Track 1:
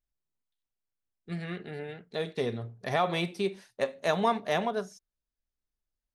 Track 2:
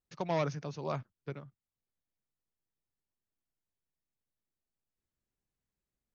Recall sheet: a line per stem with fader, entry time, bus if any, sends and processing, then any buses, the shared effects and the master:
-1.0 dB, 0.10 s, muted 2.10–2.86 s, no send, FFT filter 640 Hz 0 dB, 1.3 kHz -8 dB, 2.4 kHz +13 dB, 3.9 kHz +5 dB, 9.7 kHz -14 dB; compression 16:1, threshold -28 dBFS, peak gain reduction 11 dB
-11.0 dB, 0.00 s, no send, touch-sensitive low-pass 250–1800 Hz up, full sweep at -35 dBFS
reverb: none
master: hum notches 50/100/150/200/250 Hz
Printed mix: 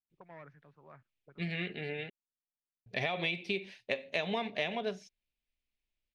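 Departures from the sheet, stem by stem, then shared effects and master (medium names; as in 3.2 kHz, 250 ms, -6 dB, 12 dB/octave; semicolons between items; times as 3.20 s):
stem 2 -11.0 dB -> -21.5 dB; master: missing hum notches 50/100/150/200/250 Hz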